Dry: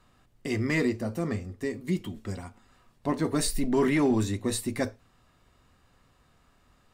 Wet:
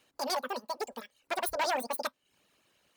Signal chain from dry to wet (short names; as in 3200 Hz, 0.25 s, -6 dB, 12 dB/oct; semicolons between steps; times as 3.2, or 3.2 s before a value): one-sided fold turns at -21.5 dBFS; HPF 240 Hz 6 dB/oct; reverb removal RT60 0.85 s; speed mistake 33 rpm record played at 78 rpm; gain -1.5 dB